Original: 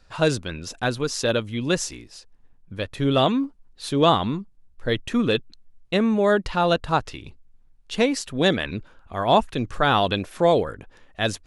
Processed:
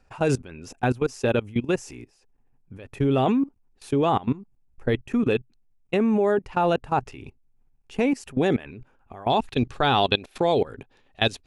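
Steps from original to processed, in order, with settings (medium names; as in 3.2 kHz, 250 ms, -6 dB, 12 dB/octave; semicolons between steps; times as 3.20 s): graphic EQ with 31 bands 125 Hz +8 dB, 250 Hz +7 dB, 400 Hz +8 dB, 800 Hz +8 dB, 2.5 kHz +6 dB; level held to a coarse grid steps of 20 dB; peaking EQ 3.9 kHz -10 dB 0.67 oct, from 9.30 s +6.5 dB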